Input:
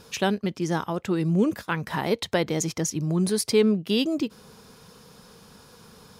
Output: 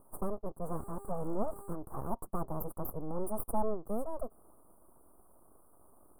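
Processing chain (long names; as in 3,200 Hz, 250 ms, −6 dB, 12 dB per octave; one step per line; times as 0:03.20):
0:00.63–0:01.72: hum with harmonics 400 Hz, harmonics 19, −40 dBFS −2 dB per octave
full-wave rectification
Chebyshev band-stop filter 1,200–9,200 Hz, order 4
level −7.5 dB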